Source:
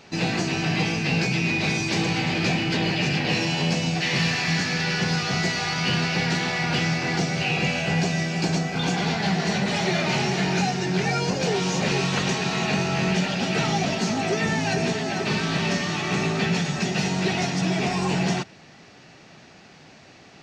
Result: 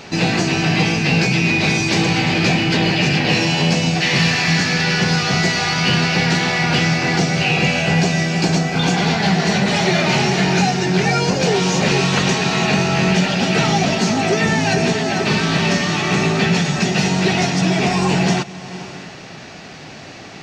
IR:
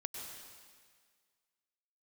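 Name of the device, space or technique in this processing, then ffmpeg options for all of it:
ducked reverb: -filter_complex "[0:a]asplit=3[link_01][link_02][link_03];[1:a]atrim=start_sample=2205[link_04];[link_02][link_04]afir=irnorm=-1:irlink=0[link_05];[link_03]apad=whole_len=900623[link_06];[link_05][link_06]sidechaincompress=threshold=-44dB:ratio=6:attack=16:release=312,volume=3.5dB[link_07];[link_01][link_07]amix=inputs=2:normalize=0,volume=6.5dB"

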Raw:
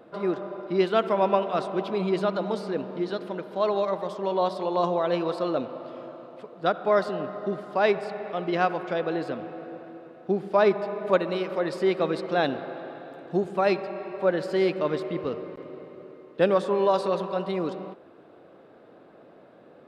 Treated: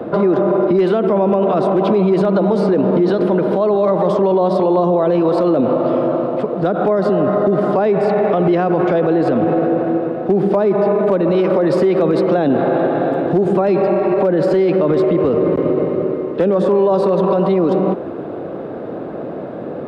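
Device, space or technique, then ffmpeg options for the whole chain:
mastering chain: -filter_complex "[0:a]highpass=frequency=43:width=0.5412,highpass=frequency=43:width=1.3066,equalizer=frequency=2300:width_type=o:width=2.9:gain=2.5,acrossover=split=180|460[link_01][link_02][link_03];[link_01]acompressor=threshold=-45dB:ratio=4[link_04];[link_02]acompressor=threshold=-26dB:ratio=4[link_05];[link_03]acompressor=threshold=-27dB:ratio=4[link_06];[link_04][link_05][link_06]amix=inputs=3:normalize=0,acompressor=threshold=-28dB:ratio=2,tiltshelf=frequency=1100:gain=9,asoftclip=type=hard:threshold=-15dB,alimiter=level_in=25.5dB:limit=-1dB:release=50:level=0:latency=1,volume=-6.5dB"

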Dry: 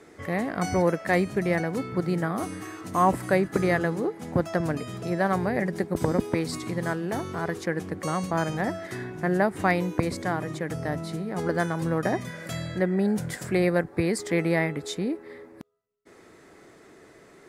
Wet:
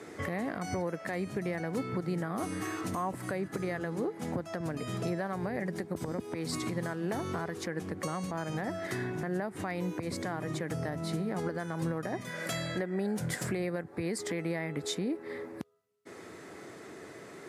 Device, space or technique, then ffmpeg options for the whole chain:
podcast mastering chain: -filter_complex "[0:a]asettb=1/sr,asplit=3[link_01][link_02][link_03];[link_01]atrim=end=12.214[link_04];[link_02]atrim=start=12.21:end=13.21,asetpts=PTS-STARTPTS,afade=type=in:duration=0.004:curve=qsin,afade=type=out:start_time=0.996:duration=0.004:curve=qsin,highpass=frequency=280:poles=1[link_05];[link_03]atrim=start=13.206[link_06];[link_04][link_05]acrossfade=duration=0.004:curve1=hsin:curve2=qsin[link_07];[link_07][link_06]acrossfade=duration=0.004:curve1=qsin:curve2=hsin,highpass=frequency=77:width=0.5412,highpass=frequency=77:width=1.3066,acompressor=threshold=-37dB:ratio=2.5,alimiter=level_in=3.5dB:limit=-24dB:level=0:latency=1:release=133,volume=-3.5dB,volume=5dB" -ar 32000 -c:a libmp3lame -b:a 112k

